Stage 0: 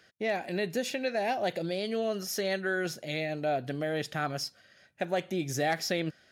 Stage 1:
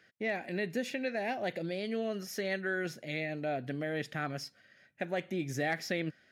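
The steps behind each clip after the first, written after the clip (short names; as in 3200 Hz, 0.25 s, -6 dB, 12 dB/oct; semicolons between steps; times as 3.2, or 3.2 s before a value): graphic EQ 125/250/500/2000 Hz +5/+7/+3/+9 dB; gain -9 dB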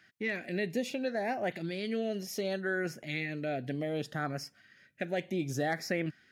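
LFO notch saw up 0.66 Hz 460–4300 Hz; gain +2 dB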